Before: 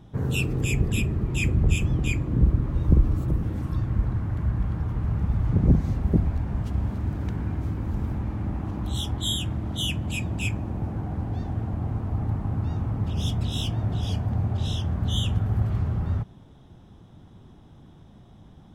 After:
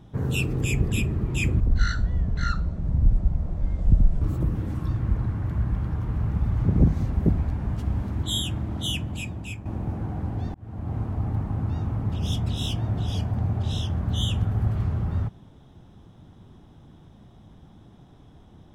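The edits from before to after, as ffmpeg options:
ffmpeg -i in.wav -filter_complex "[0:a]asplit=6[link_01][link_02][link_03][link_04][link_05][link_06];[link_01]atrim=end=1.604[link_07];[link_02]atrim=start=1.6:end=3.09,asetpts=PTS-STARTPTS,asetrate=25137,aresample=44100[link_08];[link_03]atrim=start=3.086:end=7.112[link_09];[link_04]atrim=start=9.178:end=10.6,asetpts=PTS-STARTPTS,afade=type=out:start_time=0.602:duration=0.82:silence=0.281838[link_10];[link_05]atrim=start=10.6:end=11.49,asetpts=PTS-STARTPTS,afade=type=in:duration=0.004:curve=hsin:silence=0.281838,afade=type=out:start_time=0.886:duration=0.004:curve=hsin[link_11];[link_06]atrim=start=11.49,asetpts=PTS-STARTPTS,afade=type=in:duration=0.42[link_12];[link_07][link_08]acrossfade=duration=0.004:curve1=hsin:curve2=hsin[link_13];[link_13][link_09]acrossfade=duration=0.004:curve1=hsin:curve2=hsin[link_14];[link_10][link_11][link_12]concat=n=3:v=0:a=1[link_15];[link_14][link_15]acrossfade=duration=0.004:curve1=hsin:curve2=hsin" out.wav

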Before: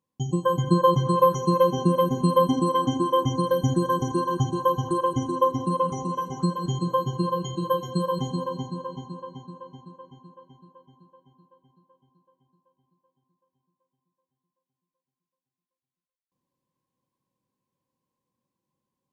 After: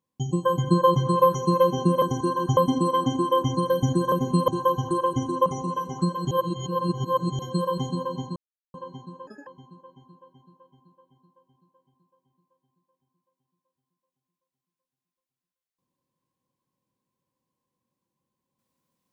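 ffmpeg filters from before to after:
ffmpeg -i in.wav -filter_complex "[0:a]asplit=12[link_01][link_02][link_03][link_04][link_05][link_06][link_07][link_08][link_09][link_10][link_11][link_12];[link_01]atrim=end=2.022[link_13];[link_02]atrim=start=3.928:end=4.482[link_14];[link_03]atrim=start=2.378:end=3.932[link_15];[link_04]atrim=start=2.018:end=2.382[link_16];[link_05]atrim=start=4.478:end=5.462[link_17];[link_06]atrim=start=5.868:end=6.722[link_18];[link_07]atrim=start=6.718:end=7.802,asetpts=PTS-STARTPTS,areverse[link_19];[link_08]atrim=start=7.798:end=8.77,asetpts=PTS-STARTPTS,afade=type=out:start_time=0.968:duration=0.004:curve=hsin[link_20];[link_09]atrim=start=8.77:end=9.15,asetpts=PTS-STARTPTS,volume=0[link_21];[link_10]atrim=start=9.15:end=9.684,asetpts=PTS-STARTPTS,afade=type=in:duration=0.004:curve=hsin[link_22];[link_11]atrim=start=9.68:end=10,asetpts=PTS-STARTPTS,asetrate=71442,aresample=44100,atrim=end_sample=8711,asetpts=PTS-STARTPTS[link_23];[link_12]atrim=start=9.996[link_24];[link_13][link_14]acrossfade=duration=0.004:curve1=hsin:curve2=hsin[link_25];[link_25][link_15]acrossfade=duration=0.004:curve1=hsin:curve2=hsin[link_26];[link_26][link_16]acrossfade=duration=0.004:curve1=hsin:curve2=hsin[link_27];[link_27][link_17]acrossfade=duration=0.004:curve1=hsin:curve2=hsin[link_28];[link_28][link_18]acrossfade=duration=0.004:curve1=hsin:curve2=hsin[link_29];[link_29][link_19]acrossfade=duration=0.004:curve1=hsin:curve2=hsin[link_30];[link_20][link_21][link_22]concat=n=3:v=0:a=1[link_31];[link_30][link_31]acrossfade=duration=0.004:curve1=hsin:curve2=hsin[link_32];[link_32][link_23]acrossfade=duration=0.004:curve1=hsin:curve2=hsin[link_33];[link_33][link_24]acrossfade=duration=0.004:curve1=hsin:curve2=hsin" out.wav

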